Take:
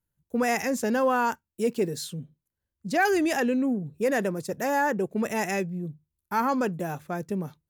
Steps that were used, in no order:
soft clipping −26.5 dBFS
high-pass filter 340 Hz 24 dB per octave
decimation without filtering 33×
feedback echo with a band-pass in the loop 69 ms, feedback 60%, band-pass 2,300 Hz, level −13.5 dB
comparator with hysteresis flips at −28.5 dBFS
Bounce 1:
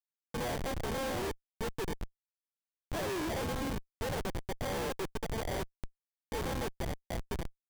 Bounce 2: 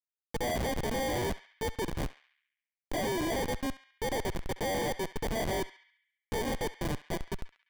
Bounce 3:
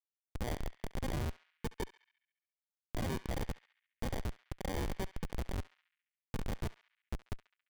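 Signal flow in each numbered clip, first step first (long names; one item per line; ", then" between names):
decimation without filtering, then high-pass filter, then soft clipping, then feedback echo with a band-pass in the loop, then comparator with hysteresis
high-pass filter, then comparator with hysteresis, then decimation without filtering, then feedback echo with a band-pass in the loop, then soft clipping
soft clipping, then high-pass filter, then decimation without filtering, then comparator with hysteresis, then feedback echo with a band-pass in the loop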